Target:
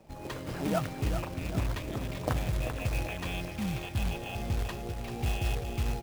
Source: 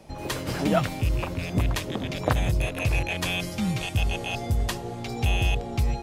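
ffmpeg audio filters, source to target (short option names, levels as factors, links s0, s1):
-af "aemphasis=mode=reproduction:type=75kf,aecho=1:1:390|780|1170|1560|1950|2340|2730:0.398|0.219|0.12|0.0662|0.0364|0.02|0.011,acrusher=bits=3:mode=log:mix=0:aa=0.000001,volume=0.447"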